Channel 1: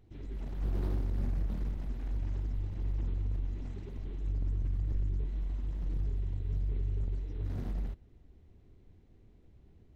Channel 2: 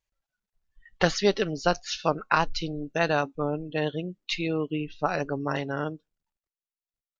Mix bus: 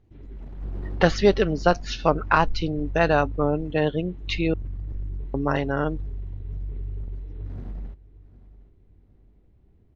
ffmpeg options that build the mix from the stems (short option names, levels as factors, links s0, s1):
-filter_complex "[0:a]volume=1,asplit=2[s0][s1];[s1]volume=0.126[s2];[1:a]acontrast=47,volume=1,asplit=3[s3][s4][s5];[s3]atrim=end=4.54,asetpts=PTS-STARTPTS,afade=t=out:st=4.536:d=0.004:c=hsin[s6];[s4]atrim=start=4.54:end=5.34,asetpts=PTS-STARTPTS,volume=0[s7];[s5]atrim=start=5.34,asetpts=PTS-STARTPTS,afade=t=in:d=0.004:c=hsin[s8];[s6][s7][s8]concat=n=3:v=0:a=1[s9];[s2]aecho=0:1:761|1522|2283|3044|3805:1|0.35|0.122|0.0429|0.015[s10];[s0][s9][s10]amix=inputs=3:normalize=0,lowpass=f=2100:p=1"